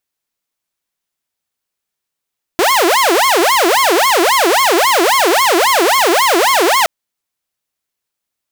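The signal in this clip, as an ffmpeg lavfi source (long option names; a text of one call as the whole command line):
ffmpeg -f lavfi -i "aevalsrc='0.473*(2*mod((710.5*t-379.5/(2*PI*3.7)*sin(2*PI*3.7*t)),1)-1)':duration=4.27:sample_rate=44100" out.wav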